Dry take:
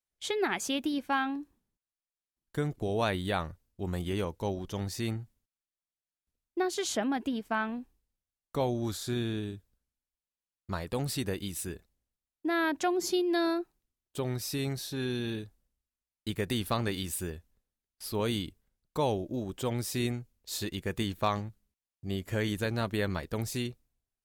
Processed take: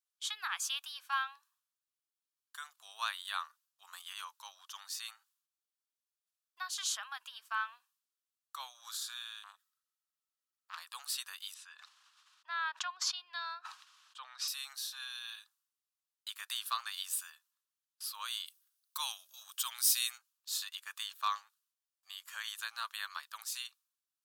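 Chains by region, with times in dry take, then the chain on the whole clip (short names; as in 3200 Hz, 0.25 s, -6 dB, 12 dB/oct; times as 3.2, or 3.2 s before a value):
9.43–10.78 small resonant body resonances 1300/1900 Hz, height 13 dB + short-mantissa float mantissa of 8-bit + core saturation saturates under 2300 Hz
11.54–14.48 LPF 4800 Hz + high shelf 3500 Hz -6.5 dB + sustainer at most 41 dB/s
18.46–20.18 tilt +3.5 dB/oct + notch 7400 Hz, Q 11
whole clip: elliptic high-pass 1100 Hz, stop band 70 dB; bell 2100 Hz -11.5 dB 0.46 oct; gain +1 dB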